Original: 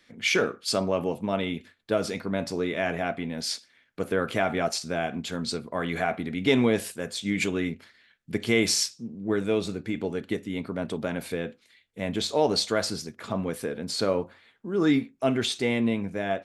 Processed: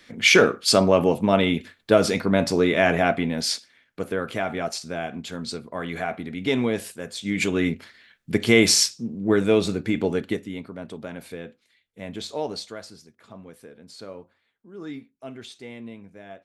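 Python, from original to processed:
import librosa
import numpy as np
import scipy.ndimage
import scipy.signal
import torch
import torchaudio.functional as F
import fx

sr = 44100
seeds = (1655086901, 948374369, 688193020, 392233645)

y = fx.gain(x, sr, db=fx.line((3.14, 8.5), (4.23, -1.5), (7.12, -1.5), (7.68, 6.5), (10.16, 6.5), (10.71, -5.5), (12.41, -5.5), (12.88, -14.0)))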